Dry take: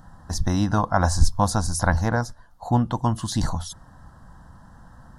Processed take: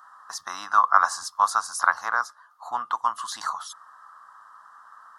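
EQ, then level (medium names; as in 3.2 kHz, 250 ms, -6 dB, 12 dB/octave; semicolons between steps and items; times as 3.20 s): resonant high-pass 1.2 kHz, resonance Q 10; -3.5 dB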